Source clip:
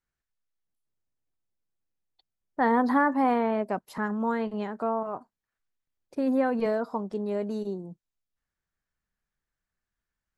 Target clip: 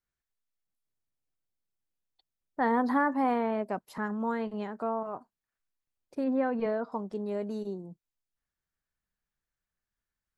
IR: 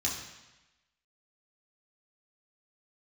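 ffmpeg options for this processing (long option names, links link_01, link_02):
-filter_complex "[0:a]asettb=1/sr,asplit=3[link_01][link_02][link_03];[link_01]atrim=end=6.244[link_04];[link_02]atrim=start=6.24:end=6.92,asetpts=PTS-STARTPTS,afade=type=in:duration=0.004:curve=qsin,afade=type=out:start_time=0.676:duration=0.004:curve=qsin,lowpass=3300[link_05];[link_03]atrim=start=6.916[link_06];[link_04][link_05]acrossfade=duration=0.004:curve1=hsin:curve2=qsin[link_07];[link_07][link_06]acrossfade=duration=0.004:curve1=qsin:curve2=hsin,volume=-3.5dB"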